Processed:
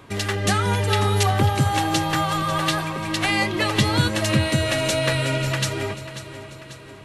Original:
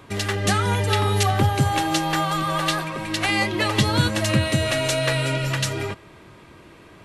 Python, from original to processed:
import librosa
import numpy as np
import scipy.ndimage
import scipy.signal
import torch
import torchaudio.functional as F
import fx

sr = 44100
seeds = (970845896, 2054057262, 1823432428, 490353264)

y = fx.echo_feedback(x, sr, ms=541, feedback_pct=53, wet_db=-13.5)